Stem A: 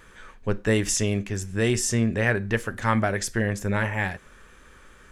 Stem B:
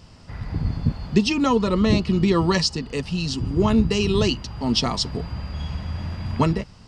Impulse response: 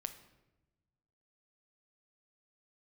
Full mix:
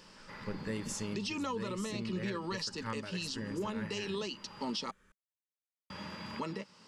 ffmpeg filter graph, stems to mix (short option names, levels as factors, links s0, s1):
-filter_complex "[0:a]bandreject=f=50:t=h:w=6,bandreject=f=100:t=h:w=6,bandreject=f=150:t=h:w=6,bandreject=f=200:t=h:w=6,volume=0.2[s0];[1:a]alimiter=limit=0.158:level=0:latency=1:release=36,highpass=400,volume=0.708,asplit=3[s1][s2][s3];[s1]atrim=end=4.91,asetpts=PTS-STARTPTS,afade=t=out:st=4.906:d=0.004:c=hsin[s4];[s2]atrim=start=4.91:end=5.9,asetpts=PTS-STARTPTS,volume=0[s5];[s3]atrim=start=5.9,asetpts=PTS-STARTPTS,afade=t=in:d=0.004:c=hsin[s6];[s4][s5][s6]concat=n=3:v=0:a=1[s7];[s0][s7]amix=inputs=2:normalize=0,asuperstop=centerf=710:order=4:qfactor=4.5,equalizer=f=190:w=3.9:g=9,alimiter=level_in=1.5:limit=0.0631:level=0:latency=1:release=389,volume=0.668"